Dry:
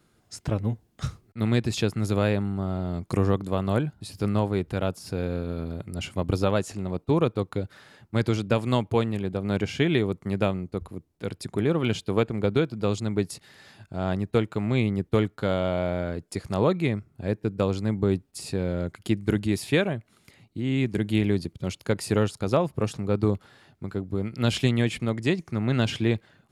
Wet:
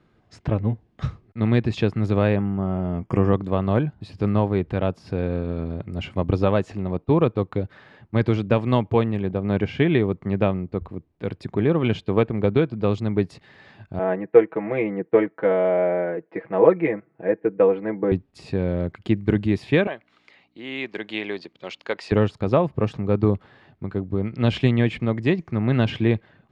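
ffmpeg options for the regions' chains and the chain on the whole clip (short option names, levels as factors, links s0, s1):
-filter_complex "[0:a]asettb=1/sr,asplit=3[s0][s1][s2];[s0]atrim=end=2.364[s3];[s1]atrim=start=2.36:end=3.33,asetpts=PTS-STARTPTS,afade=t=in:d=0.004:c=qsin,afade=t=out:st=0.966:d=0.004:c=qsin,asuperstop=centerf=4000:order=12:qfactor=3.2,asplit=2[s4][s5];[s5]adelay=16,volume=0.224[s6];[s4][s6]amix=inputs=2:normalize=0,atrim=end_sample=42777[s7];[s2]atrim=start=3.326[s8];[s3][s7]acrossfade=d=0.004:c1=hsin:c2=qsin[s9];[s9][s8]acrossfade=d=0.004:c1=qsin:c2=hsin,asettb=1/sr,asplit=3[s10][s11][s12];[s10]atrim=end=9.304[s13];[s11]atrim=start=9.3:end=10.9,asetpts=PTS-STARTPTS,afade=t=in:d=0.004:c=qsin,afade=t=out:st=1.596:d=0.004:c=qsin,highshelf=f=5800:g=-5.5,acompressor=mode=upward:threshold=0.0178:ratio=2.5:attack=3.2:release=140:knee=2.83:detection=peak[s14];[s12]atrim=start=10.896[s15];[s13][s14]acrossfade=d=0.004:c1=hsin:c2=qsin[s16];[s16][s15]acrossfade=d=0.004:c1=qsin:c2=hsin,asettb=1/sr,asplit=3[s17][s18][s19];[s17]atrim=end=13.994[s20];[s18]atrim=start=13.99:end=18.12,asetpts=PTS-STARTPTS,afade=t=in:d=0.004:c=qsin,afade=t=out:st=4.126:d=0.004:c=qsin,highpass=340,equalizer=f=460:t=q:w=4:g=6,equalizer=f=1200:t=q:w=4:g=-5,equalizer=f=1900:t=q:w=4:g=4,lowpass=f=2200:w=0.5412,lowpass=f=2200:w=1.3066,aecho=1:1:6.1:0.88,atrim=end_sample=182133[s21];[s19]atrim=start=18.116[s22];[s20][s21]acrossfade=d=0.004:c1=hsin:c2=qsin[s23];[s23][s22]acrossfade=d=0.004:c1=qsin:c2=hsin,asettb=1/sr,asplit=3[s24][s25][s26];[s24]atrim=end=19.874[s27];[s25]atrim=start=19.87:end=22.12,asetpts=PTS-STARTPTS,afade=t=in:d=0.004:c=qsin,afade=t=out:st=2.246:d=0.004:c=qsin,highshelf=f=3400:g=10,aeval=exprs='val(0)+0.00316*(sin(2*PI*60*n/s)+sin(2*PI*2*60*n/s)/2+sin(2*PI*3*60*n/s)/3+sin(2*PI*4*60*n/s)/4+sin(2*PI*5*60*n/s)/5)':c=same,highpass=550,lowpass=5300[s28];[s26]atrim=start=22.116[s29];[s27][s28]acrossfade=d=0.004:c1=hsin:c2=qsin[s30];[s30][s29]acrossfade=d=0.004:c1=qsin:c2=hsin,lowpass=2600,bandreject=f=1400:w=12,volume=1.58"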